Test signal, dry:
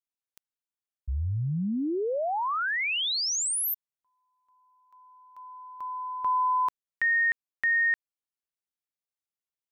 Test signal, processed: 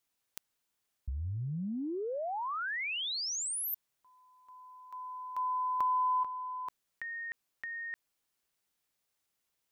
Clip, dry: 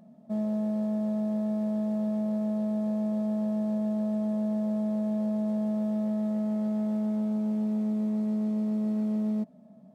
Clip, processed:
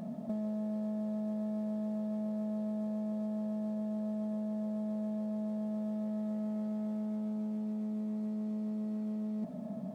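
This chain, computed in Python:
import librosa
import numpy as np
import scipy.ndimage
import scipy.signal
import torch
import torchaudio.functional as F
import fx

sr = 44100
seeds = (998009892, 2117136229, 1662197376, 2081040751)

y = fx.over_compress(x, sr, threshold_db=-38.0, ratio=-1.0)
y = y * librosa.db_to_amplitude(2.5)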